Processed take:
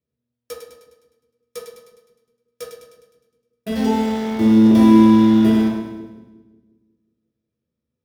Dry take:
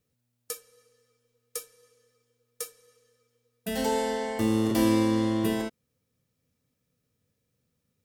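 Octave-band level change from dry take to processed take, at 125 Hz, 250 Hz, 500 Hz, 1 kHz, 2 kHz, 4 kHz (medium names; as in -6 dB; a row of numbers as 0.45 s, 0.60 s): +9.5 dB, +14.0 dB, +6.5 dB, +8.0 dB, +4.0 dB, +4.0 dB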